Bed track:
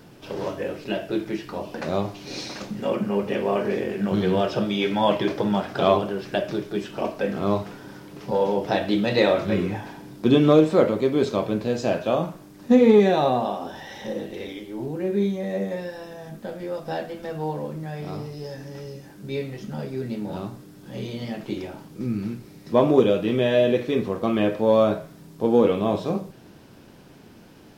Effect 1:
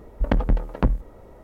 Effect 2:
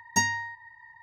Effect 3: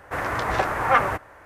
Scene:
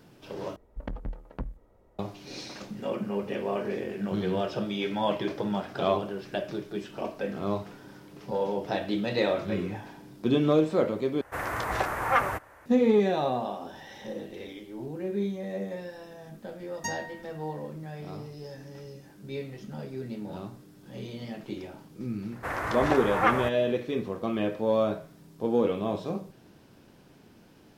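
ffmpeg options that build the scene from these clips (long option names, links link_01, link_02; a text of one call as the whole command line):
ffmpeg -i bed.wav -i cue0.wav -i cue1.wav -i cue2.wav -filter_complex "[3:a]asplit=2[link_01][link_02];[0:a]volume=-7dB[link_03];[link_01]highshelf=frequency=8900:gain=10[link_04];[link_03]asplit=3[link_05][link_06][link_07];[link_05]atrim=end=0.564[link_08];[1:a]atrim=end=1.43,asetpts=PTS-STARTPTS,volume=-15.5dB[link_09];[link_06]atrim=start=1.986:end=11.214[link_10];[link_04]atrim=end=1.45,asetpts=PTS-STARTPTS,volume=-5.5dB[link_11];[link_07]atrim=start=12.656[link_12];[2:a]atrim=end=1.02,asetpts=PTS-STARTPTS,volume=-10.5dB,afade=type=in:duration=0.004:curve=hsin,afade=type=out:start_time=1.016:duration=0.004:curve=hsin,adelay=735588S[link_13];[link_02]atrim=end=1.45,asetpts=PTS-STARTPTS,volume=-5dB,afade=type=in:duration=0.004:curve=hsin,afade=type=out:start_time=1.446:duration=0.004:curve=hsin,adelay=22320[link_14];[link_08][link_09]acrossfade=duration=0.004:curve1=hsin:curve2=hsin[link_15];[link_15][link_10]acrossfade=duration=0.004:curve1=hsin:curve2=hsin[link_16];[link_16][link_11]acrossfade=duration=0.004:curve1=hsin:curve2=hsin[link_17];[link_17][link_12]acrossfade=duration=0.004:curve1=hsin:curve2=hsin[link_18];[link_18][link_13][link_14]amix=inputs=3:normalize=0" out.wav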